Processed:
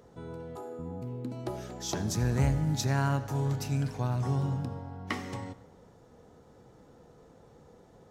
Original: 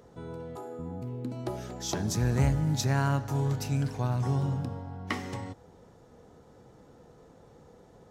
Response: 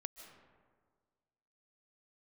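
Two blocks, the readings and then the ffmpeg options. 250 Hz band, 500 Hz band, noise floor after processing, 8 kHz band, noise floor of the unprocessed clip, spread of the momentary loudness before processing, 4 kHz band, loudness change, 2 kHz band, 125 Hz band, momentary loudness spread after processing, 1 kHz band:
-1.0 dB, -1.0 dB, -57 dBFS, -1.5 dB, -56 dBFS, 14 LU, -1.5 dB, -1.5 dB, -1.0 dB, -1.5 dB, 14 LU, -1.0 dB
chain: -filter_complex "[0:a]asplit=2[a][b];[1:a]atrim=start_sample=2205,asetrate=83790,aresample=44100[c];[b][c]afir=irnorm=-1:irlink=0,volume=3dB[d];[a][d]amix=inputs=2:normalize=0,volume=-4.5dB"

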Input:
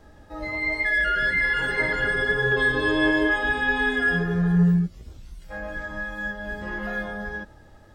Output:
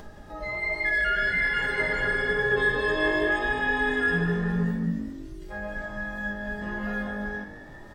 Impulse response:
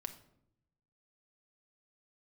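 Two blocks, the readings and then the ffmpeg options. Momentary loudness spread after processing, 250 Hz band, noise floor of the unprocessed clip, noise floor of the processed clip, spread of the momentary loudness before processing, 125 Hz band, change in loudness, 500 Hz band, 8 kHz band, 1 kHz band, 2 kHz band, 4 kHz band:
14 LU, -4.5 dB, -50 dBFS, -44 dBFS, 13 LU, -6.0 dB, -3.0 dB, -0.5 dB, n/a, -1.5 dB, -2.5 dB, -3.5 dB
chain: -filter_complex "[0:a]asplit=6[a][b][c][d][e][f];[b]adelay=201,afreqshift=49,volume=-10.5dB[g];[c]adelay=402,afreqshift=98,volume=-17.6dB[h];[d]adelay=603,afreqshift=147,volume=-24.8dB[i];[e]adelay=804,afreqshift=196,volume=-31.9dB[j];[f]adelay=1005,afreqshift=245,volume=-39dB[k];[a][g][h][i][j][k]amix=inputs=6:normalize=0,acompressor=mode=upward:threshold=-34dB:ratio=2.5[l];[1:a]atrim=start_sample=2205,atrim=end_sample=6174[m];[l][m]afir=irnorm=-1:irlink=0"

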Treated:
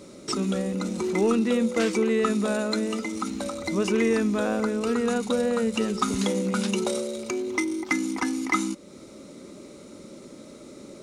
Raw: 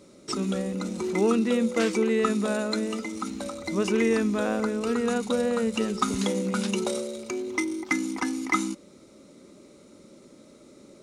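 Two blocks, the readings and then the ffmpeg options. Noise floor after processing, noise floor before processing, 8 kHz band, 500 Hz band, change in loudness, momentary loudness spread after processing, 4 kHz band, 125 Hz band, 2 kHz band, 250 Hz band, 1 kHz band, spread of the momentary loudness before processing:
-46 dBFS, -53 dBFS, +1.5 dB, +1.0 dB, +1.0 dB, 21 LU, +1.5 dB, +1.5 dB, +1.0 dB, +1.0 dB, +0.5 dB, 9 LU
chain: -filter_complex "[0:a]asplit=2[a][b];[b]acompressor=threshold=-41dB:ratio=6,volume=2dB[c];[a][c]amix=inputs=2:normalize=0,asoftclip=type=tanh:threshold=-10.5dB"

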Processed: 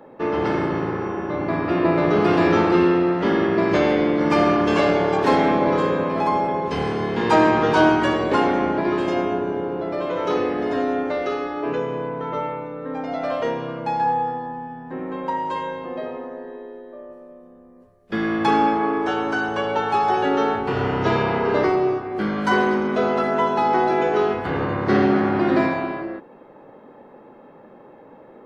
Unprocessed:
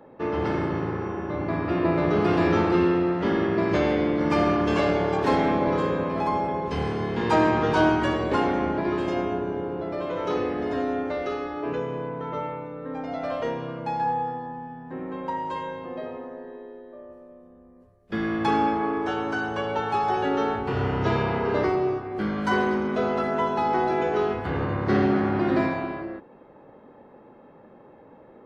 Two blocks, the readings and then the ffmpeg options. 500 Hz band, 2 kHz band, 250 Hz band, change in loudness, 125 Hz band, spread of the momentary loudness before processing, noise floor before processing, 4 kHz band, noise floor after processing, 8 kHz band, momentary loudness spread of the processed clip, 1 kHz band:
+4.5 dB, +5.0 dB, +4.0 dB, +4.5 dB, +1.0 dB, 13 LU, -51 dBFS, +5.0 dB, -46 dBFS, n/a, 12 LU, +5.0 dB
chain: -af "equalizer=f=62:t=o:w=1.9:g=-9.5,volume=5dB"

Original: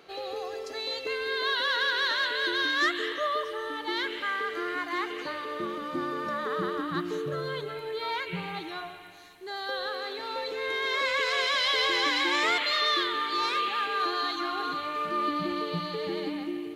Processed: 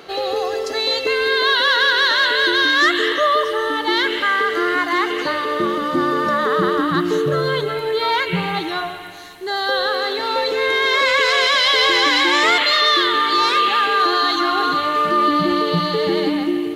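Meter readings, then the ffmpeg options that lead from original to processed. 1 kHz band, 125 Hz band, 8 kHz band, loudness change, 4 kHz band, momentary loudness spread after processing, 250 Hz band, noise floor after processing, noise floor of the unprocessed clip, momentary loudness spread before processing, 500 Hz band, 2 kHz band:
+12.5 dB, +13.5 dB, +11.5 dB, +12.0 dB, +11.5 dB, 8 LU, +13.0 dB, -26 dBFS, -39 dBFS, 11 LU, +13.0 dB, +11.5 dB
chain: -filter_complex "[0:a]bandreject=f=2.4k:w=13,asplit=2[a][b];[b]alimiter=limit=-23.5dB:level=0:latency=1:release=32,volume=2.5dB[c];[a][c]amix=inputs=2:normalize=0,volume=6.5dB"

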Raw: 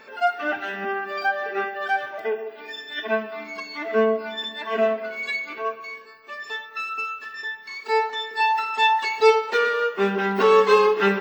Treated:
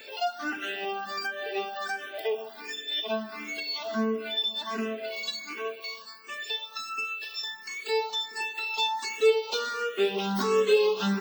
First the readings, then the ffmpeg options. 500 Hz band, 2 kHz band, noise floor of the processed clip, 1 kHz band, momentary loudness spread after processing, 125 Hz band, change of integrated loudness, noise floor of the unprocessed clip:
-6.0 dB, -8.0 dB, -45 dBFS, -10.5 dB, 11 LU, n/a, -6.5 dB, -43 dBFS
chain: -filter_complex "[0:a]aexciter=amount=4.3:drive=5.8:freq=2.8k,acrossover=split=430[a][b];[b]acompressor=threshold=-30dB:ratio=2.5[c];[a][c]amix=inputs=2:normalize=0,asplit=2[d][e];[e]afreqshift=1.4[f];[d][f]amix=inputs=2:normalize=1"

